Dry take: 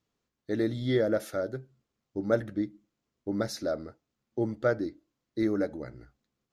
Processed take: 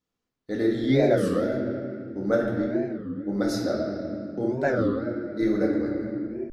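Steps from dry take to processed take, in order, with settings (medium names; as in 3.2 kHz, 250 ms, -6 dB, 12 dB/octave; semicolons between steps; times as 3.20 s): gate -58 dBFS, range -6 dB; reverberation RT60 2.5 s, pre-delay 4 ms, DRR -3 dB; warped record 33 1/3 rpm, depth 250 cents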